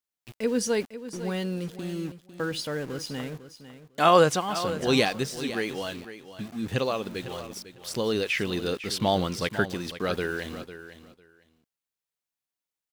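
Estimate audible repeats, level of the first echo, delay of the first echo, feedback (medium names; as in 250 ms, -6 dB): 2, -13.0 dB, 501 ms, 17%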